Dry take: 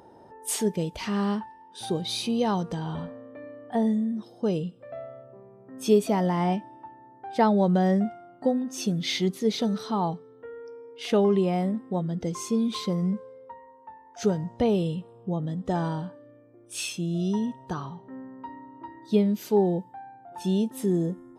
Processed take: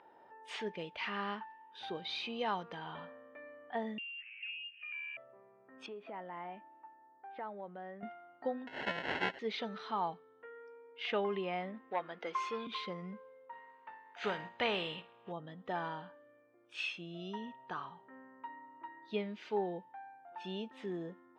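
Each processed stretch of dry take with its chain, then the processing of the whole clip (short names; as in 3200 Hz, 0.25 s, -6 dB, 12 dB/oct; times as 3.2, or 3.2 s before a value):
3.98–5.17 inverted band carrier 3000 Hz + compressor 5:1, threshold -42 dBFS + doubler 15 ms -12 dB
5.86–8.03 compressor 10:1, threshold -24 dBFS + HPF 300 Hz 6 dB/oct + tape spacing loss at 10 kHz 41 dB
8.67–9.39 half-waves squared off + low shelf 190 Hz -11.5 dB + sample-rate reducer 1200 Hz
11.9–12.67 HPF 370 Hz + dynamic EQ 1200 Hz, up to +7 dB, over -48 dBFS, Q 1 + sample leveller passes 1
13.52–15.31 spectral contrast lowered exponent 0.68 + notch 5400 Hz, Q 5.8 + flutter echo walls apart 9.7 m, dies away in 0.21 s
whole clip: LPF 2500 Hz 24 dB/oct; differentiator; gain +11.5 dB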